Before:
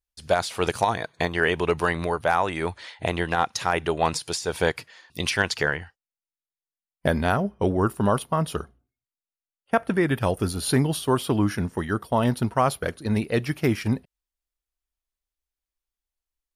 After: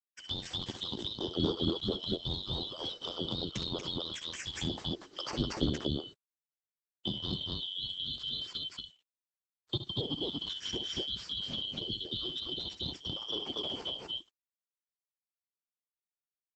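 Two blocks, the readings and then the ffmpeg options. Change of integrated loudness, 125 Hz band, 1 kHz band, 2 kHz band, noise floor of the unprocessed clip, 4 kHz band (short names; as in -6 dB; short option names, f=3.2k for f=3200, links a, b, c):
-10.5 dB, -13.5 dB, -23.0 dB, -24.0 dB, under -85 dBFS, +2.0 dB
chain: -filter_complex "[0:a]afftfilt=real='real(if(lt(b,272),68*(eq(floor(b/68),0)*1+eq(floor(b/68),1)*3+eq(floor(b/68),2)*0+eq(floor(b/68),3)*2)+mod(b,68),b),0)':imag='imag(if(lt(b,272),68*(eq(floor(b/68),0)*1+eq(floor(b/68),1)*3+eq(floor(b/68),2)*0+eq(floor(b/68),3)*2)+mod(b,68),b),0)':win_size=2048:overlap=0.75,asplit=2[a][b];[b]aecho=0:1:64.14|236.2:0.316|0.891[c];[a][c]amix=inputs=2:normalize=0,asoftclip=type=hard:threshold=-7.5dB,acrossover=split=530[d][e];[e]acompressor=threshold=-29dB:ratio=8[f];[d][f]amix=inputs=2:normalize=0,highpass=54,equalizer=f=360:t=o:w=0.47:g=4,acrusher=bits=9:mix=0:aa=0.000001,volume=-5dB" -ar 48000 -c:a libopus -b:a 12k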